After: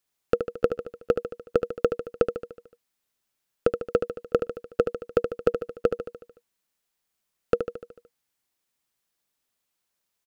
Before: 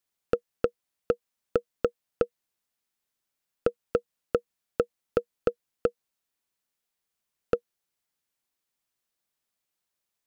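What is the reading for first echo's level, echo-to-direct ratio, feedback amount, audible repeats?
-8.0 dB, -6.5 dB, 57%, 6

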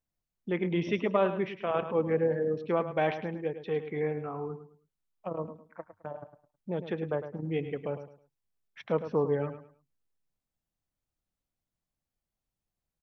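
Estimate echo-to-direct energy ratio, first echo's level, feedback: -10.5 dB, -11.0 dB, 27%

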